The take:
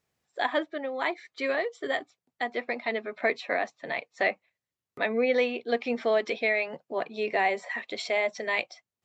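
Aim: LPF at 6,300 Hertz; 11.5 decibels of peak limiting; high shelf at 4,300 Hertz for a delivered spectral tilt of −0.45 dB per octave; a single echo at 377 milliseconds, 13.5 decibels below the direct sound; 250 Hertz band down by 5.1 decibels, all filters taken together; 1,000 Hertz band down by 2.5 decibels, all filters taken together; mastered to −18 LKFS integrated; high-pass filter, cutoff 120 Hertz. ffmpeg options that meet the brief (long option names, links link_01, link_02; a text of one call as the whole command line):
ffmpeg -i in.wav -af "highpass=120,lowpass=6300,equalizer=frequency=250:width_type=o:gain=-5.5,equalizer=frequency=1000:width_type=o:gain=-3,highshelf=frequency=4300:gain=-5.5,alimiter=level_in=1.5dB:limit=-24dB:level=0:latency=1,volume=-1.5dB,aecho=1:1:377:0.211,volume=18dB" out.wav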